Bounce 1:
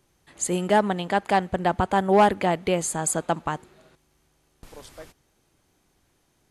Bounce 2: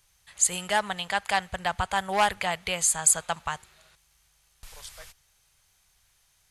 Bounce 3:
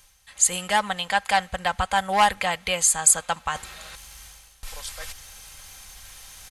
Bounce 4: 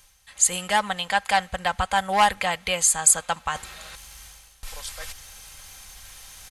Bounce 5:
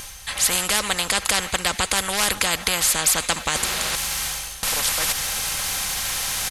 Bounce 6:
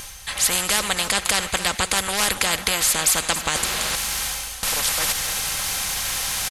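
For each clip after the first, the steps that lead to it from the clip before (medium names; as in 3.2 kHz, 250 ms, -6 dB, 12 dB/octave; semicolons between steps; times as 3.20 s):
amplifier tone stack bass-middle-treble 10-0-10; trim +6.5 dB
comb 3.8 ms, depth 44%; reverse; upward compressor, threshold -31 dBFS; reverse; trim +3 dB
no audible change
spectrum-flattening compressor 4:1; trim +2.5 dB
delay 276 ms -12 dB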